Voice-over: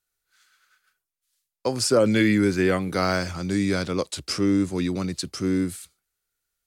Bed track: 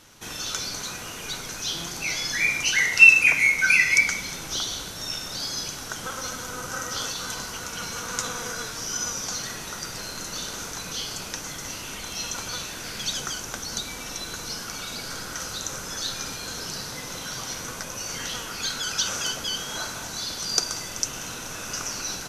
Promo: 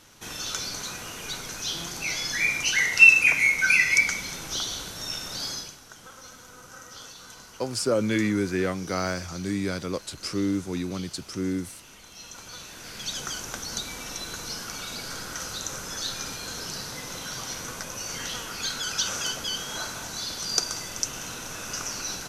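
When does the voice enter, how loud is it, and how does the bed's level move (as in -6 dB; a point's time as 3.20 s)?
5.95 s, -5.0 dB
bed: 5.51 s -1.5 dB
5.80 s -13.5 dB
12.12 s -13.5 dB
13.36 s -1.5 dB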